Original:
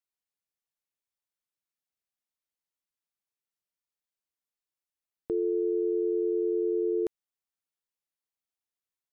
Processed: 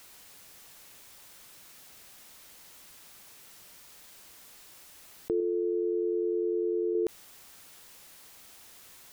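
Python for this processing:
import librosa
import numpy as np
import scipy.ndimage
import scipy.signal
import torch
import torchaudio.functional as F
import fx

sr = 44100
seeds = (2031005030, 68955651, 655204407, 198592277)

y = fx.peak_eq(x, sr, hz=450.0, db=-6.0, octaves=2.0, at=(5.4, 6.95))
y = fx.env_flatten(y, sr, amount_pct=70)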